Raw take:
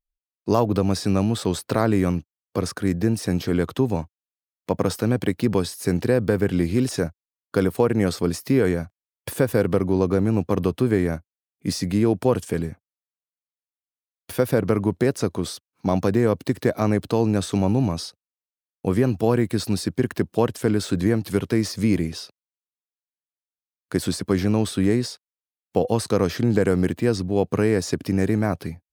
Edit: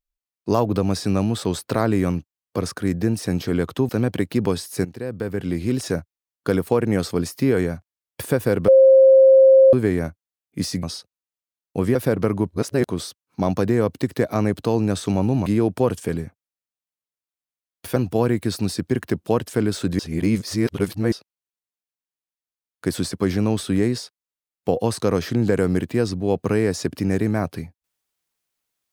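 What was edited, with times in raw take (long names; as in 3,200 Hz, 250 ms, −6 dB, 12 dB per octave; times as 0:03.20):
0:03.89–0:04.97: remove
0:05.93–0:07.00: fade in, from −16 dB
0:09.76–0:10.81: beep over 532 Hz −7.5 dBFS
0:11.91–0:14.41: swap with 0:17.92–0:19.04
0:14.98–0:15.33: reverse
0:21.07–0:22.20: reverse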